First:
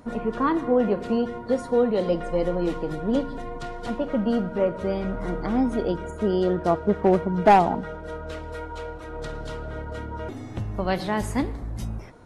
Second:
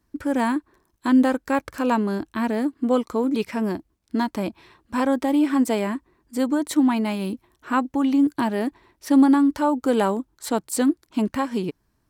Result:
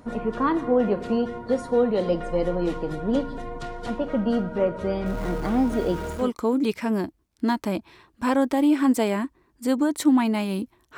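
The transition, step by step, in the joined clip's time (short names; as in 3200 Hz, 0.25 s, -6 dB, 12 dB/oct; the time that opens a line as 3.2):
first
5.06–6.32 zero-crossing step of -34.5 dBFS
6.23 switch to second from 2.94 s, crossfade 0.18 s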